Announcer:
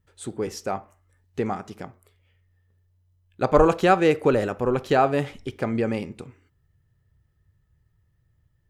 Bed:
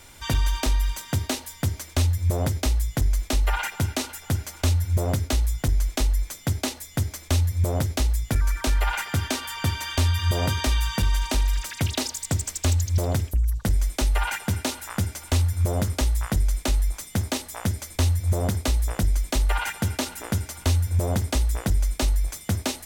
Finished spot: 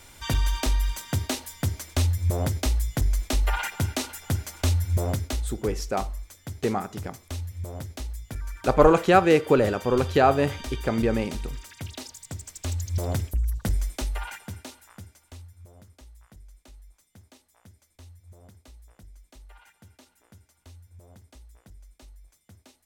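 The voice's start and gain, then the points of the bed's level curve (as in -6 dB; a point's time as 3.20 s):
5.25 s, +0.5 dB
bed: 5.04 s -1.5 dB
5.77 s -12 dB
12.42 s -12 dB
13.10 s -3 dB
13.72 s -3 dB
15.74 s -27.5 dB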